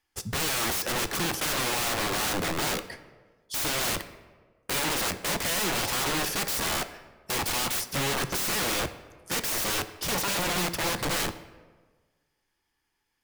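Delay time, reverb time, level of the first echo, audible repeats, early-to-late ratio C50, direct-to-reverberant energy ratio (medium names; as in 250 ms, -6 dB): no echo, 1.5 s, no echo, no echo, 13.5 dB, 11.0 dB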